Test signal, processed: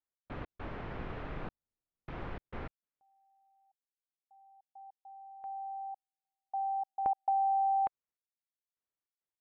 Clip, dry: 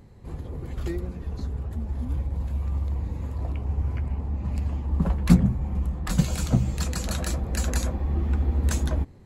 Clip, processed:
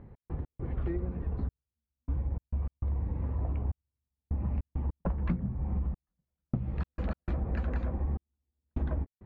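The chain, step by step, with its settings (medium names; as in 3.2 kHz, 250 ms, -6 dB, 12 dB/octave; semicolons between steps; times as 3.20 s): dynamic bell 720 Hz, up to -7 dB, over -42 dBFS, Q 7.2; trance gate "x.x.xxxxxx....x" 101 bpm -60 dB; Bessel low-pass 1.6 kHz, order 4; compression 10:1, threshold -27 dBFS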